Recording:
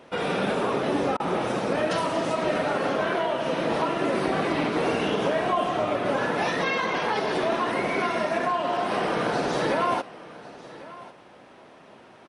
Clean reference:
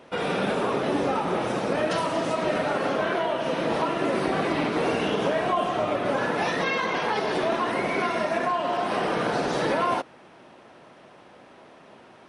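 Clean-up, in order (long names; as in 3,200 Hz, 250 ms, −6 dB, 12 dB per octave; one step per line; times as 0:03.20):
repair the gap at 0:01.17, 27 ms
echo removal 1,096 ms −18.5 dB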